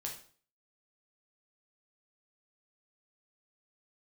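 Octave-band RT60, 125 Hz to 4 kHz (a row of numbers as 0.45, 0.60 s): 0.55, 0.50, 0.45, 0.45, 0.40, 0.40 s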